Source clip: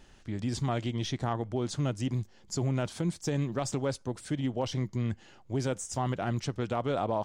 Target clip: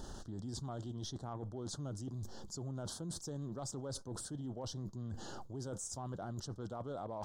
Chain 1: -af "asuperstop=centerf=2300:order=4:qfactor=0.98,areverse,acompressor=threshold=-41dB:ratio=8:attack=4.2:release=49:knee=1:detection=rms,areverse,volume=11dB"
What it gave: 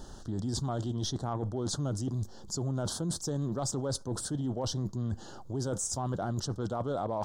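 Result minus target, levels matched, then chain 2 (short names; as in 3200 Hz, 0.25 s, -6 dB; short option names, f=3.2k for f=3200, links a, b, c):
compressor: peak gain reduction -10 dB
-af "asuperstop=centerf=2300:order=4:qfactor=0.98,areverse,acompressor=threshold=-52.5dB:ratio=8:attack=4.2:release=49:knee=1:detection=rms,areverse,volume=11dB"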